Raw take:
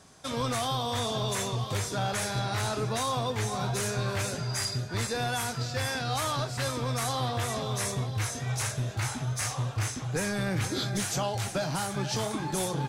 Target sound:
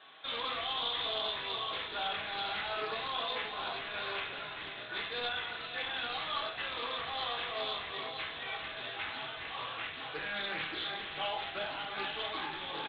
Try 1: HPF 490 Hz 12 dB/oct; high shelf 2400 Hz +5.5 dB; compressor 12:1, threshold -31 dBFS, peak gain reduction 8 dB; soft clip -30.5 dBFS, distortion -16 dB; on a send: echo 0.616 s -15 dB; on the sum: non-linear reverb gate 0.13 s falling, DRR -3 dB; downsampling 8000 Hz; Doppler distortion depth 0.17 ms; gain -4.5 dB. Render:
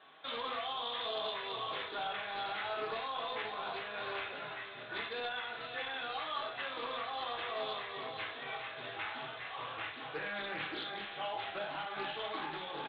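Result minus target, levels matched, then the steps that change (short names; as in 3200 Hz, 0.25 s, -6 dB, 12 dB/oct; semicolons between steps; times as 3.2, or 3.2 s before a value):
compressor: peak gain reduction +8 dB; 4000 Hz band -2.5 dB
change: high shelf 2400 Hz +16 dB; remove: compressor 12:1, threshold -31 dBFS, peak gain reduction 8 dB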